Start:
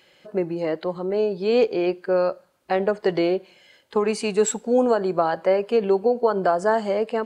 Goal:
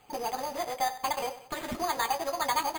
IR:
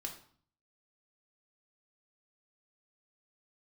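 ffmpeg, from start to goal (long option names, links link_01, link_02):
-filter_complex "[0:a]acrossover=split=820[link_01][link_02];[link_01]acompressor=threshold=-32dB:ratio=16[link_03];[link_02]equalizer=frequency=4500:width_type=o:width=1.6:gain=-11.5[link_04];[link_03][link_04]amix=inputs=2:normalize=0,aecho=1:1:238|476|714|952:0.2|0.0758|0.0288|0.0109,asetrate=24046,aresample=44100,atempo=1.83401,lowshelf=frequency=85:gain=10.5,acrusher=bits=3:mode=log:mix=0:aa=0.000001[link_05];[1:a]atrim=start_sample=2205,afade=type=out:start_time=0.13:duration=0.01,atrim=end_sample=6174[link_06];[link_05][link_06]afir=irnorm=-1:irlink=0,areverse,acompressor=mode=upward:threshold=-47dB:ratio=2.5,areverse,asetrate=114660,aresample=44100,acrusher=samples=8:mix=1:aa=0.000001"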